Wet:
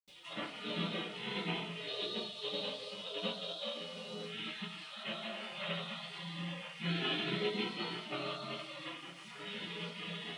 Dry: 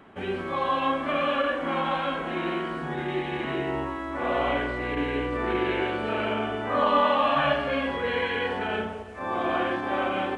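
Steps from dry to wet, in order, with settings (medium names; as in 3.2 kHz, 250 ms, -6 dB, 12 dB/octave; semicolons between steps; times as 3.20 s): spectral gate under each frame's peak -25 dB weak; 1.79–4.17 s: graphic EQ 500/2000/4000 Hz +7/-10/+10 dB; upward compressor, threshold -47 dBFS; brick-wall FIR high-pass 150 Hz; reverberation RT60 0.35 s, pre-delay 76 ms, DRR -60 dB; trim +14.5 dB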